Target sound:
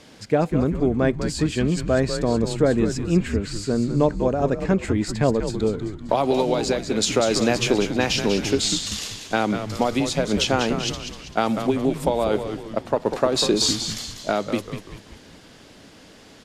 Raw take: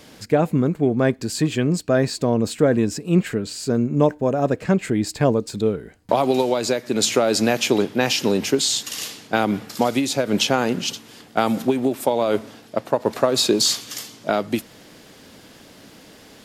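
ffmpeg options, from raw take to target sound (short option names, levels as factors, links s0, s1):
-filter_complex "[0:a]lowpass=8800,asplit=2[s0][s1];[s1]asplit=5[s2][s3][s4][s5][s6];[s2]adelay=194,afreqshift=-100,volume=0.398[s7];[s3]adelay=388,afreqshift=-200,volume=0.184[s8];[s4]adelay=582,afreqshift=-300,volume=0.0841[s9];[s5]adelay=776,afreqshift=-400,volume=0.0389[s10];[s6]adelay=970,afreqshift=-500,volume=0.0178[s11];[s7][s8][s9][s10][s11]amix=inputs=5:normalize=0[s12];[s0][s12]amix=inputs=2:normalize=0,volume=0.794"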